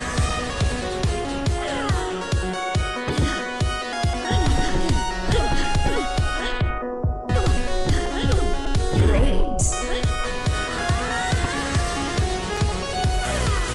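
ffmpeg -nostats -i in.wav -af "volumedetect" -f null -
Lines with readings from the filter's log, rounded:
mean_volume: -21.3 dB
max_volume: -10.4 dB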